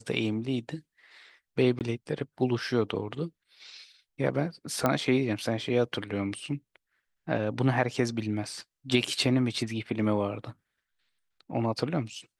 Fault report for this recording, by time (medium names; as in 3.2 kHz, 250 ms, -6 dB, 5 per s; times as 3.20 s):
1.79–1.81 s: dropout 18 ms
4.86 s: pop -11 dBFS